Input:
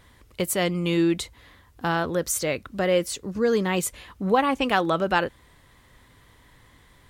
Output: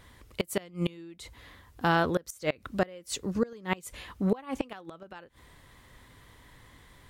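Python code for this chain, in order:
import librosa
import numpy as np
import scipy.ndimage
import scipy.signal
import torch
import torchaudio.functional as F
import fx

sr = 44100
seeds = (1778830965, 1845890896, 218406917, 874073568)

y = fx.gate_flip(x, sr, shuts_db=-14.0, range_db=-25)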